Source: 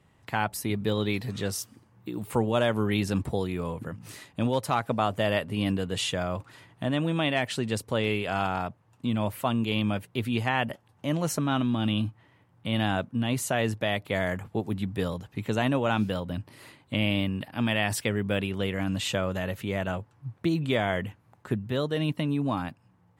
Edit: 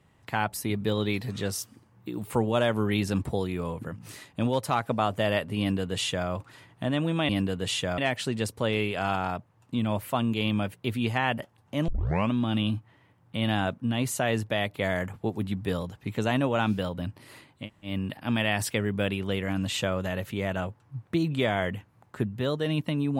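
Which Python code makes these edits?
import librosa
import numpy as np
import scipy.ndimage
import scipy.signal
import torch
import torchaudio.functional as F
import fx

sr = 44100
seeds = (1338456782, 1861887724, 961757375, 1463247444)

y = fx.edit(x, sr, fx.duplicate(start_s=5.59, length_s=0.69, to_s=7.29),
    fx.tape_start(start_s=11.19, length_s=0.44),
    fx.room_tone_fill(start_s=16.93, length_s=0.28, crossfade_s=0.16), tone=tone)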